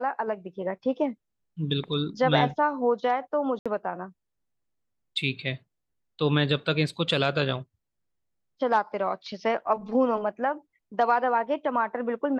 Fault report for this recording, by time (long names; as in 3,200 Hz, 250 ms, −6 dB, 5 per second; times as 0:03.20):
0:03.59–0:03.66: drop-out 66 ms